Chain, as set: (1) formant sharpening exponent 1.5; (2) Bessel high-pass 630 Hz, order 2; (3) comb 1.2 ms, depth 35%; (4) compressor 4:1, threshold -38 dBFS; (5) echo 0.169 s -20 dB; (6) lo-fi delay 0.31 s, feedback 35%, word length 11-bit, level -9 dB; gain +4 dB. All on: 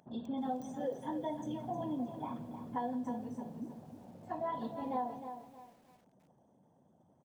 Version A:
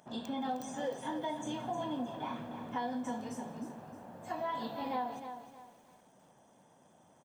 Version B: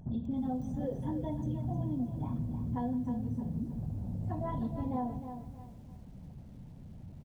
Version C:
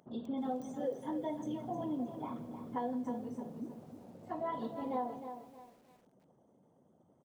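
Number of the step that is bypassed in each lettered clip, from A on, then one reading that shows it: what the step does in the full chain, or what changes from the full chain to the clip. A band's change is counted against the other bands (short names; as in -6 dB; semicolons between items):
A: 1, 4 kHz band +10.0 dB; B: 2, 125 Hz band +17.5 dB; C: 3, 500 Hz band +2.5 dB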